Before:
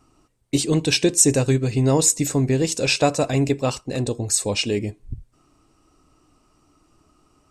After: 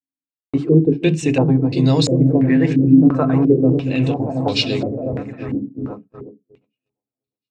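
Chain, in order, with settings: high-pass 57 Hz 24 dB/octave; delay with an opening low-pass 357 ms, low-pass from 200 Hz, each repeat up 1 oct, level -3 dB; gate -30 dBFS, range -50 dB; on a send at -11.5 dB: reverberation RT60 0.15 s, pre-delay 3 ms; on the sum: step-sequenced low-pass 2.9 Hz 270–4100 Hz; trim -1.5 dB

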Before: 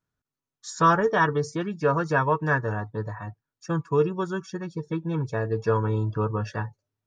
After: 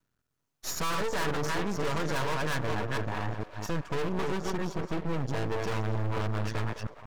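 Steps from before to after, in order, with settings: chunks repeated in reverse 229 ms, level -7 dB; 5.55–6.50 s: peaking EQ 76 Hz +14 dB 0.39 oct; in parallel at +3 dB: compression, threshold -29 dBFS, peak gain reduction 14 dB; on the sum: overload inside the chain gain 24 dB; repeats whose band climbs or falls 207 ms, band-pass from 500 Hz, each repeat 0.7 oct, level -8 dB; half-wave rectifier

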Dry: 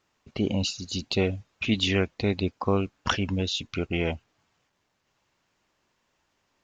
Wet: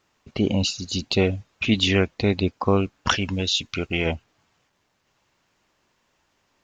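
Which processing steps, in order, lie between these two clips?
3.10–4.06 s: tilt shelf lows -3.5 dB, about 1.5 kHz; trim +4.5 dB

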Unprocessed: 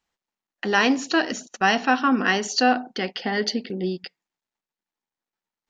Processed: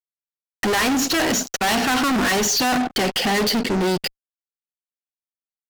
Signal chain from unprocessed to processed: fuzz box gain 39 dB, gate -47 dBFS; trim -5 dB

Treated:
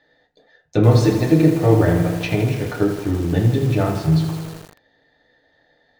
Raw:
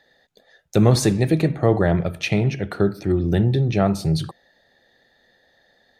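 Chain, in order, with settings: Bessel low-pass 3.9 kHz, order 2; FDN reverb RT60 0.31 s, low-frequency decay 1.1×, high-frequency decay 0.7×, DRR -0.5 dB; bit-crushed delay 81 ms, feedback 80%, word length 5-bit, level -8.5 dB; trim -2.5 dB

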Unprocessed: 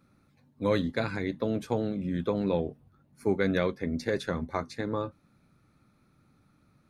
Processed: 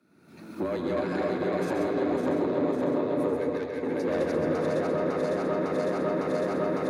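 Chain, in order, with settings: backward echo that repeats 277 ms, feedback 78%, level -0.5 dB; recorder AGC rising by 45 dB/s; dynamic bell 3 kHz, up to -7 dB, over -46 dBFS, Q 0.78; saturation -20.5 dBFS, distortion -13 dB; 3.36–3.83 s: rippled Chebyshev high-pass 1.4 kHz, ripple 6 dB; frequency shift +78 Hz; feedback echo behind a low-pass 298 ms, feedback 49%, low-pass 3.3 kHz, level -4 dB; reverberation RT60 0.95 s, pre-delay 131 ms, DRR 4 dB; trim -3.5 dB

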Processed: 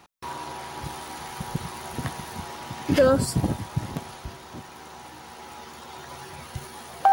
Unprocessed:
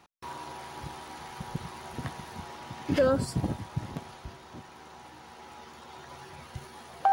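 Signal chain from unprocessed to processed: treble shelf 8.6 kHz +4 dB, from 0.84 s +10 dB; trim +5.5 dB

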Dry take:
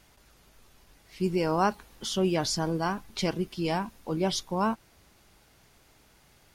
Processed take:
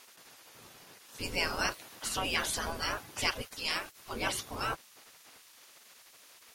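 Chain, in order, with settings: 3.41–4.13 s: bass shelf 370 Hz -11.5 dB; spectral gate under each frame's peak -15 dB weak; trim +8 dB

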